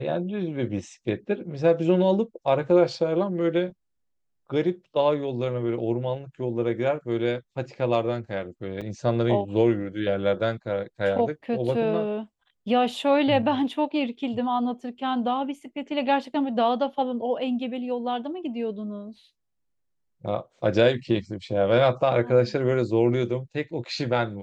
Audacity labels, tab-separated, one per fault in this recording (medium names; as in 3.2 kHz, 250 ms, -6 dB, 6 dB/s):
8.810000	8.820000	dropout 5.6 ms